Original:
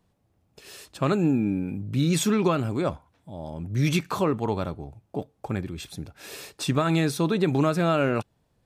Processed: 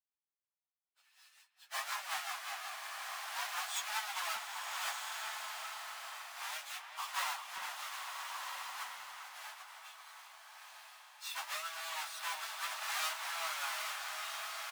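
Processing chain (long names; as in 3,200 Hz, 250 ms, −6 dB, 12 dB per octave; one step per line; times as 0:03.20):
each half-wave held at its own peak
power curve on the samples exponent 1.4
Butterworth high-pass 790 Hz 48 dB per octave
time stretch by phase vocoder 1.7×
rotating-speaker cabinet horn 5.5 Hz, later 1.2 Hz, at 0:04.19
far-end echo of a speakerphone 390 ms, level −8 dB
slow-attack reverb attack 1,350 ms, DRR 2.5 dB
level −6 dB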